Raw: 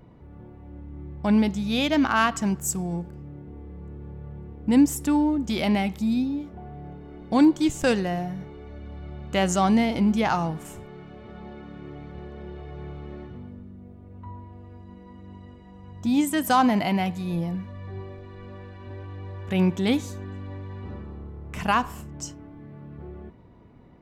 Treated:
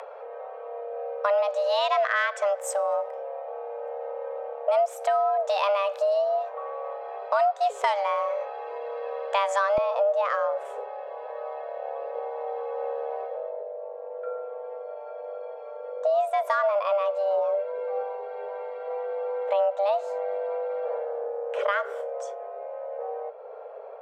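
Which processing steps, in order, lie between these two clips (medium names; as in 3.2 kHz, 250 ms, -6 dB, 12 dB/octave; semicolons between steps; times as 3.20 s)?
frequency shift +400 Hz; upward compressor, threshold -40 dBFS; band-pass filter 1.1 kHz, Q 0.55, from 9.78 s 410 Hz; compression 4:1, threshold -29 dBFS, peak gain reduction 12.5 dB; trim +7 dB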